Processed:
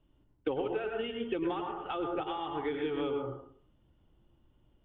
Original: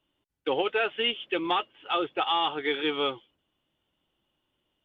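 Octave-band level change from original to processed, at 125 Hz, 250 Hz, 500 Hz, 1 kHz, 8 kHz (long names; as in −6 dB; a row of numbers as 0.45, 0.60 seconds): +4.5 dB, −1.0 dB, −3.5 dB, −8.5 dB, can't be measured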